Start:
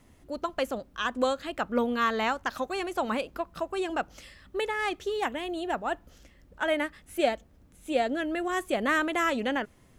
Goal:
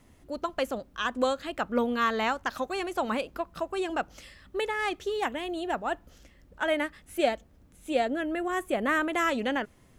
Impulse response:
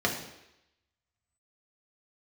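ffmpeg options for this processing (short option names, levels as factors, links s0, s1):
-filter_complex "[0:a]asettb=1/sr,asplit=3[s0][s1][s2];[s0]atrim=end=8.054[s3];[s1]atrim=start=8.05:end=9.13,asetpts=PTS-STARTPTS,afade=t=in:d=0.004:c=qsin,afade=t=out:st=1.076:d=0.004:c=qsin,equalizer=f=4800:t=o:w=1.2:g=-7.5[s4];[s2]atrim=start=9.126[s5];[s3][s4]acrossfade=d=0.004:c1=hsin:c2=qsin[s6];[s6][s5]acrossfade=d=0.004:c1=qsin:c2=hsin"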